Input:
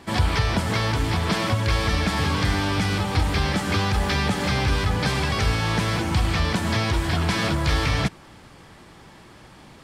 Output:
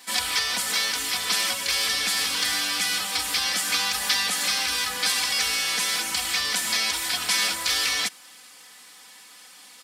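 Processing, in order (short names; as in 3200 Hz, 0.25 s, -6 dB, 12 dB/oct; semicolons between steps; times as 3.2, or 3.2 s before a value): differentiator; comb 4 ms, depth 99%; gain +8.5 dB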